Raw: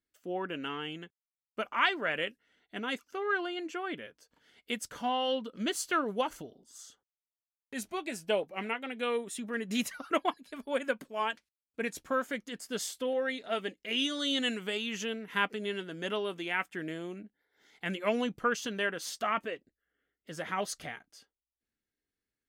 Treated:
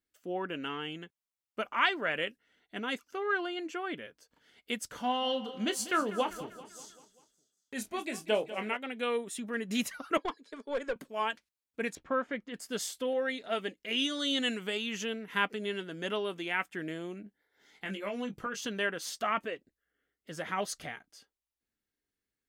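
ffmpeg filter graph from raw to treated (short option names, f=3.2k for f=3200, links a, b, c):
-filter_complex "[0:a]asettb=1/sr,asplit=3[a][b][c];[a]atrim=end=4.874[d];[b]atrim=start=4.87:end=8.77,asetpts=PTS-STARTPTS,afade=t=in:d=0.004:c=qsin,afade=t=out:st=3.896:d=0.004:c=qsin,asplit=2[e][f];[f]adelay=28,volume=-10.5dB[g];[e][g]amix=inputs=2:normalize=0,atrim=end_sample=171990,aecho=1:1:195|390|585|780|975:0.178|0.096|0.0519|0.028|0.0151,atrim=end_sample=171990[h];[c]atrim=start=8.766[i];[d][h]acrossfade=d=0.004:c1=hsin:c2=qsin[j];[j][i]acrossfade=d=0.004:c1=qsin:c2=hsin,asettb=1/sr,asplit=3[k][l][m];[k]atrim=end=10.174[n];[l]atrim=start=10.17:end=10.96,asetpts=PTS-STARTPTS,afade=t=in:d=0.004:c=qsin,afade=t=out:st=0.786:d=0.004:c=qsin,highpass=f=230:w=0.5412,highpass=f=230:w=1.3066,equalizer=f=250:t=q:w=4:g=-3,equalizer=f=450:t=q:w=4:g=8,equalizer=f=720:t=q:w=4:g=-6,equalizer=f=2.7k:t=q:w=4:g=-8,lowpass=f=7.9k:w=0.5412,lowpass=f=7.9k:w=1.3066,aeval=exprs='(tanh(20*val(0)+0.25)-tanh(0.25))/20':c=same[o];[m]atrim=start=10.956[p];[n][o]acrossfade=d=0.004:c1=hsin:c2=qsin[q];[q][p]acrossfade=d=0.004:c1=qsin:c2=hsin,asettb=1/sr,asplit=3[r][s][t];[r]atrim=end=11.954[u];[s]atrim=start=11.95:end=12.54,asetpts=PTS-STARTPTS,afade=t=in:d=0.004:c=qsin,afade=t=out:st=0.586:d=0.004:c=qsin,lowpass=2.6k,bandreject=f=1.5k:w=19[v];[t]atrim=start=12.536[w];[u][v]acrossfade=d=0.004:c1=hsin:c2=qsin[x];[x][w]acrossfade=d=0.004:c1=qsin:c2=hsin,asettb=1/sr,asplit=3[y][z][aa];[y]atrim=end=17.244[ab];[z]atrim=start=17.24:end=18.61,asetpts=PTS-STARTPTS,afade=t=in:d=0.004:c=qsin,afade=t=out:st=1.366:d=0.004:c=qsin,acompressor=threshold=-35dB:ratio=3:attack=3.2:release=140:knee=1:detection=peak,asplit=2[ac][ad];[ad]adelay=20,volume=-6dB[ae];[ac][ae]amix=inputs=2:normalize=0,atrim=end_sample=60417[af];[aa]atrim=start=18.606[ag];[ab][af]acrossfade=d=0.004:c1=hsin:c2=qsin[ah];[ah][ag]acrossfade=d=0.004:c1=qsin:c2=hsin"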